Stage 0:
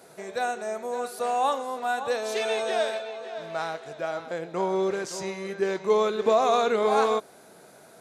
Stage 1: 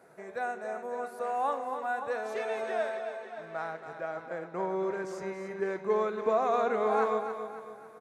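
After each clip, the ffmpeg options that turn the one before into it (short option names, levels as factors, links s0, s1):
-filter_complex "[0:a]highshelf=f=2500:t=q:w=1.5:g=-9,asplit=2[s0][s1];[s1]aecho=0:1:277|554|831|1108|1385:0.355|0.153|0.0656|0.0282|0.0121[s2];[s0][s2]amix=inputs=2:normalize=0,volume=0.473"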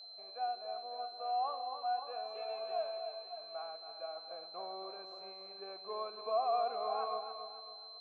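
-filter_complex "[0:a]asplit=3[s0][s1][s2];[s0]bandpass=f=730:t=q:w=8,volume=1[s3];[s1]bandpass=f=1090:t=q:w=8,volume=0.501[s4];[s2]bandpass=f=2440:t=q:w=8,volume=0.355[s5];[s3][s4][s5]amix=inputs=3:normalize=0,aeval=exprs='val(0)+0.00398*sin(2*PI*4100*n/s)':c=same,volume=0.891"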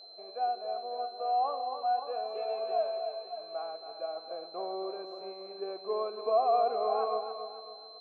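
-af "equalizer=f=360:w=0.69:g=13"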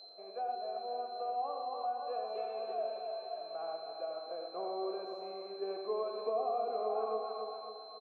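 -filter_complex "[0:a]acrossover=split=460[s0][s1];[s1]acompressor=threshold=0.0158:ratio=5[s2];[s0][s2]amix=inputs=2:normalize=0,asplit=2[s3][s4];[s4]aecho=0:1:87|123|521:0.473|0.316|0.251[s5];[s3][s5]amix=inputs=2:normalize=0,volume=0.794"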